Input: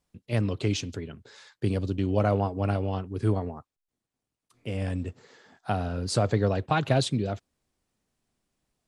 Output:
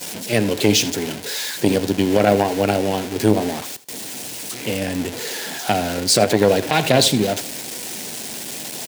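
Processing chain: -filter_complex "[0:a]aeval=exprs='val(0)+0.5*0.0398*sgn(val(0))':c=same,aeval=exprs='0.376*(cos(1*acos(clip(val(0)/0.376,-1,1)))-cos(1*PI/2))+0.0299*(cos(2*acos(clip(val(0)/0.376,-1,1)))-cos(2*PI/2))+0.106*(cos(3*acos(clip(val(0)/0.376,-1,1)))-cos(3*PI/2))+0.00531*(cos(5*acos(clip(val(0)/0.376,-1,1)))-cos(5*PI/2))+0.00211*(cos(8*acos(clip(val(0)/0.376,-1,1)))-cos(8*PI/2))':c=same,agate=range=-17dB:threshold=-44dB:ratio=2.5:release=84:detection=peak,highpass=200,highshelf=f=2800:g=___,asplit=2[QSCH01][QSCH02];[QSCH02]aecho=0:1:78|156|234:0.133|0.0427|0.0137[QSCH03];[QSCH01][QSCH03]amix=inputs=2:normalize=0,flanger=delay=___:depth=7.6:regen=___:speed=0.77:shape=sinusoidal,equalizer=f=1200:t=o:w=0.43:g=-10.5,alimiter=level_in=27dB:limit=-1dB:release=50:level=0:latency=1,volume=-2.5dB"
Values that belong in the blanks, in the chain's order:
6, 2, 83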